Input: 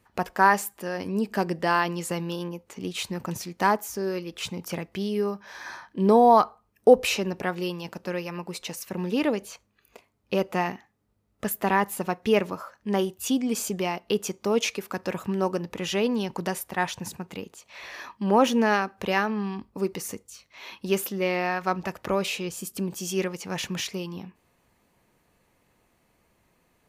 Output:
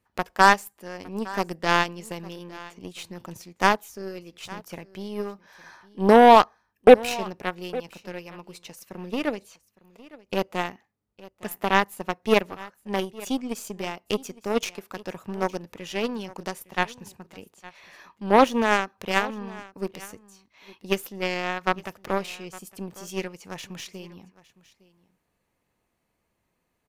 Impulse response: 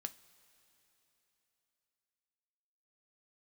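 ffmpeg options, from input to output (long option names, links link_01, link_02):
-af "aeval=exprs='0.596*(cos(1*acos(clip(val(0)/0.596,-1,1)))-cos(1*PI/2))+0.0133*(cos(6*acos(clip(val(0)/0.596,-1,1)))-cos(6*PI/2))+0.0668*(cos(7*acos(clip(val(0)/0.596,-1,1)))-cos(7*PI/2))':channel_layout=same,aecho=1:1:860:0.1,volume=4dB"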